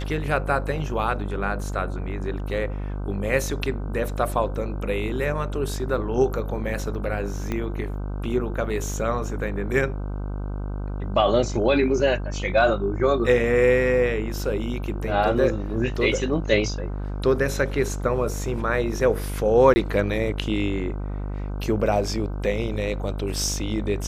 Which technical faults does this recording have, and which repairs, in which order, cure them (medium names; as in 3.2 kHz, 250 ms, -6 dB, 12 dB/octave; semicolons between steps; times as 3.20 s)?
buzz 50 Hz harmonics 31 -29 dBFS
7.52 s: pop -14 dBFS
19.74–19.76 s: dropout 20 ms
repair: de-click; de-hum 50 Hz, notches 31; interpolate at 19.74 s, 20 ms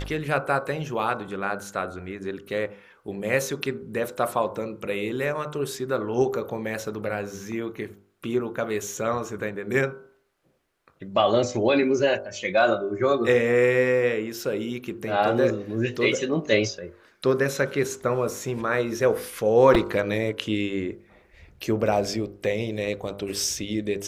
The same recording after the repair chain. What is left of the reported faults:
7.52 s: pop